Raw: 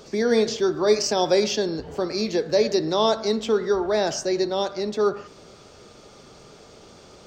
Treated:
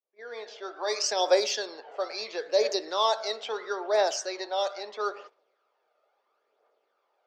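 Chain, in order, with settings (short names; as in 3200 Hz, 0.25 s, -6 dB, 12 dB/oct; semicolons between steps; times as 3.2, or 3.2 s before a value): opening faded in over 1.03 s; gate -38 dBFS, range -18 dB; HPF 510 Hz 24 dB/oct; phaser 0.75 Hz, delay 1.6 ms, feedback 43%; low-pass opened by the level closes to 1900 Hz, open at -18.5 dBFS; gain -3 dB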